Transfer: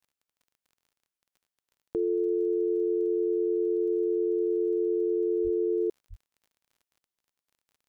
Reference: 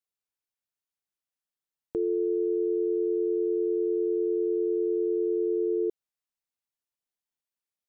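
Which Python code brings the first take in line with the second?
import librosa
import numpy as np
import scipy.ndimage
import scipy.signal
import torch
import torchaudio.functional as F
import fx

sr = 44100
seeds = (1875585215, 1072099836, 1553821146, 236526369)

y = fx.fix_declick_ar(x, sr, threshold=6.5)
y = fx.highpass(y, sr, hz=140.0, slope=24, at=(5.43, 5.55), fade=0.02)
y = fx.highpass(y, sr, hz=140.0, slope=24, at=(6.09, 6.21), fade=0.02)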